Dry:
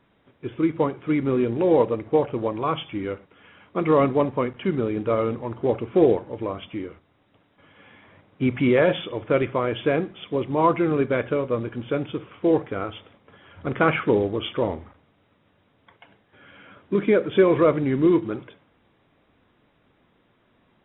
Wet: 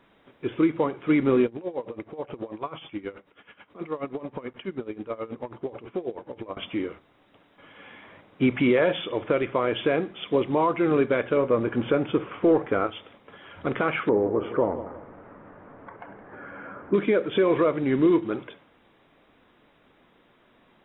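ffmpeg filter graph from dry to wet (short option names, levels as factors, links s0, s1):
-filter_complex "[0:a]asettb=1/sr,asplit=3[s0][s1][s2];[s0]atrim=end=1.464[s3];[s1]atrim=start=1.46:end=6.57,asetpts=PTS-STARTPTS,afade=t=in:d=0.004:c=qsin,afade=t=out:st=5.106:d=0.004:c=qsin,acompressor=threshold=0.0355:ratio=4:attack=3.2:release=140:knee=1:detection=peak,aeval=exprs='val(0)*pow(10,-18*(0.5-0.5*cos(2*PI*9.3*n/s))/20)':c=same[s4];[s2]atrim=start=6.566[s5];[s3][s4]acrossfade=d=0.004:c1=hsin:c2=qsin[s6];[s6][s5]acrossfade=d=0.004:c1=qsin:c2=hsin,asettb=1/sr,asplit=3[s7][s8][s9];[s7]atrim=end=11.374[s10];[s8]atrim=start=11.37:end=12.87,asetpts=PTS-STARTPTS,afade=t=in:d=0.004:c=qsin,afade=t=out:st=1.496:d=0.004:c=qsin,lowpass=2000,aemphasis=mode=production:type=50fm,acontrast=76[s11];[s9]atrim=start=12.866[s12];[s10][s11]acrossfade=d=0.004:c1=hsin:c2=qsin[s13];[s13][s12]acrossfade=d=0.004:c1=qsin:c2=hsin,asettb=1/sr,asplit=3[s14][s15][s16];[s14]atrim=end=14.094[s17];[s15]atrim=start=14.09:end=16.94,asetpts=PTS-STARTPTS,afade=t=in:d=0.004:c=qsin,afade=t=out:st=2.846:d=0.004:c=qsin,lowpass=f=1600:w=0.5412,lowpass=f=1600:w=1.3066,acompressor=mode=upward:threshold=0.0178:ratio=2.5:attack=3.2:release=140:knee=2.83:detection=peak,aecho=1:1:167|334|501:0.211|0.0655|0.0203,atrim=end_sample=125685[s18];[s16]atrim=start=16.936[s19];[s17][s18]acrossfade=d=0.004:c1=hsin:c2=qsin[s20];[s20][s19]acrossfade=d=0.004:c1=qsin:c2=hsin,equalizer=f=88:t=o:w=2:g=-9,alimiter=limit=0.15:level=0:latency=1:release=368,volume=1.68"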